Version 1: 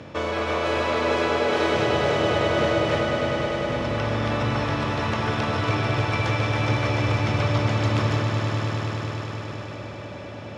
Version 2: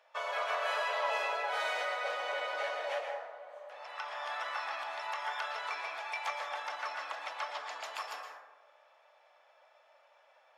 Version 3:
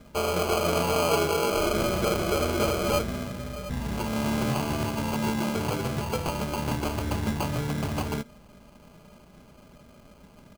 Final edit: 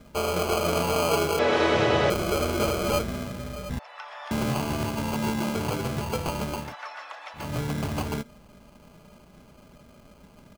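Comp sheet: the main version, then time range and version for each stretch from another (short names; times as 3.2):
3
1.39–2.1 from 1
3.79–4.31 from 2
6.63–7.45 from 2, crossfade 0.24 s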